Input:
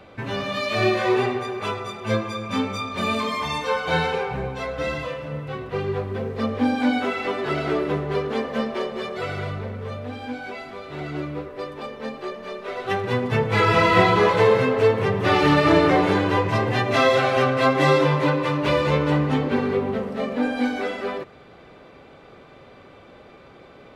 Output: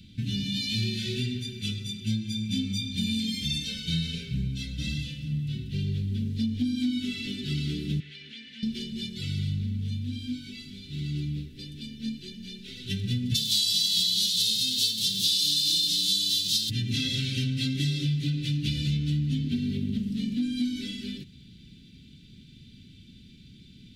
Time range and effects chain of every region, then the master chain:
8–8.63 band-pass 2000 Hz, Q 2 + fast leveller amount 100%
13.34–16.69 spectral whitening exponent 0.6 + HPF 230 Hz + resonant high shelf 2900 Hz +9.5 dB, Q 3
whole clip: elliptic band-stop 220–3400 Hz, stop band 70 dB; bell 1400 Hz +9.5 dB 0.59 oct; compressor 5:1, threshold -29 dBFS; gain +4.5 dB

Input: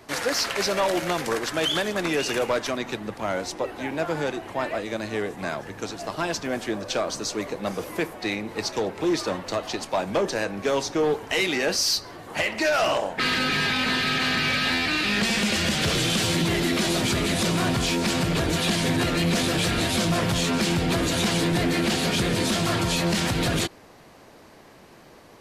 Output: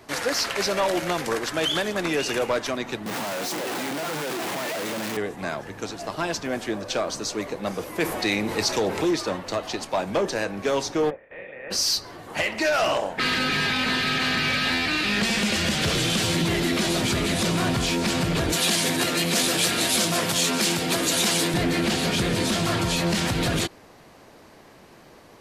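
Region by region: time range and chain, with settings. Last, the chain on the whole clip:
3.06–5.17 infinite clipping + HPF 140 Hz 24 dB/oct
8–9.11 high shelf 4300 Hz +5.5 dB + fast leveller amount 50%
11.09–11.7 spectral limiter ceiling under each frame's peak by 22 dB + vocal tract filter e + air absorption 190 m
18.52–21.54 Bessel high-pass 230 Hz + high shelf 5100 Hz +10.5 dB
whole clip: dry

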